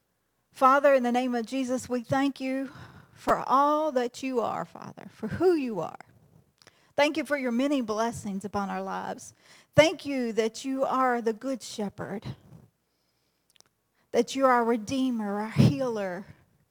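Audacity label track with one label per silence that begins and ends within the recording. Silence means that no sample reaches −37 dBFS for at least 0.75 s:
12.320000	13.600000	silence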